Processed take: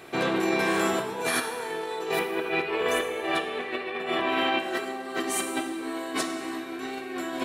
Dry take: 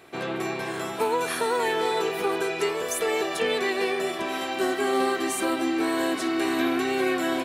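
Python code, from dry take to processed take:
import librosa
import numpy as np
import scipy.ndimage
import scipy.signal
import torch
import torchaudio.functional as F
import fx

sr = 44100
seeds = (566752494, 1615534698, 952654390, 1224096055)

y = fx.high_shelf_res(x, sr, hz=4200.0, db=-12.5, q=1.5, at=(2.19, 4.6))
y = fx.over_compress(y, sr, threshold_db=-30.0, ratio=-0.5)
y = fx.rev_plate(y, sr, seeds[0], rt60_s=1.8, hf_ratio=0.75, predelay_ms=0, drr_db=4.5)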